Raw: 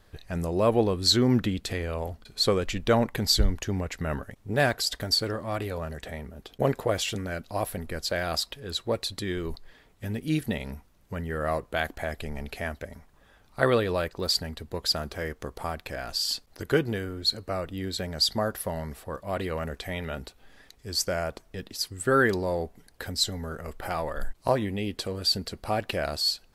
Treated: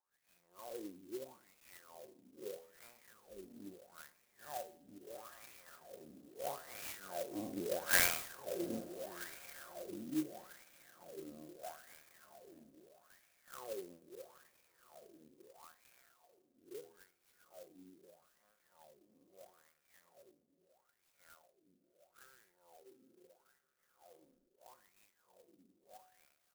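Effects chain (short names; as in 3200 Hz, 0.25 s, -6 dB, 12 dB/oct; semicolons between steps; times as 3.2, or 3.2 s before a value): time blur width 0.112 s; Doppler pass-by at 7.99, 8 m/s, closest 2.1 m; high shelf 5100 Hz -9 dB; comb 5.6 ms, depth 38%; on a send: diffused feedback echo 0.689 s, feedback 49%, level -11.5 dB; on the sum: wah 0.77 Hz 260–2500 Hz, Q 9.8; de-hum 82.22 Hz, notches 13; clock jitter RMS 0.089 ms; gain +17 dB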